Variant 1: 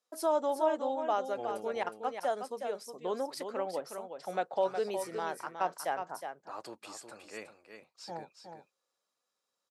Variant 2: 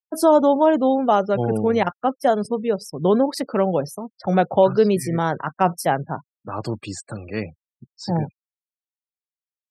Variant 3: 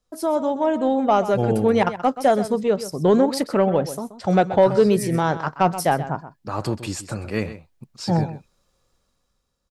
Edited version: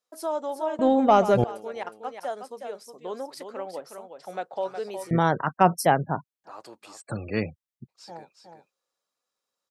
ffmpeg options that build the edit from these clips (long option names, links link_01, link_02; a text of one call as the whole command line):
ffmpeg -i take0.wav -i take1.wav -i take2.wav -filter_complex "[1:a]asplit=2[link_01][link_02];[0:a]asplit=4[link_03][link_04][link_05][link_06];[link_03]atrim=end=0.792[link_07];[2:a]atrim=start=0.788:end=1.442[link_08];[link_04]atrim=start=1.438:end=5.112[link_09];[link_01]atrim=start=5.108:end=6.442[link_10];[link_05]atrim=start=6.438:end=7.02[link_11];[link_02]atrim=start=7:end=7.9[link_12];[link_06]atrim=start=7.88[link_13];[link_07][link_08]acrossfade=duration=0.004:curve1=hsin:curve2=hsin[link_14];[link_14][link_09]acrossfade=duration=0.004:curve1=hsin:curve2=hsin[link_15];[link_15][link_10]acrossfade=duration=0.004:curve1=hsin:curve2=hsin[link_16];[link_16][link_11]acrossfade=duration=0.004:curve1=hsin:curve2=hsin[link_17];[link_17][link_12]acrossfade=duration=0.02:curve1=tri:curve2=tri[link_18];[link_18][link_13]acrossfade=duration=0.02:curve1=tri:curve2=tri" out.wav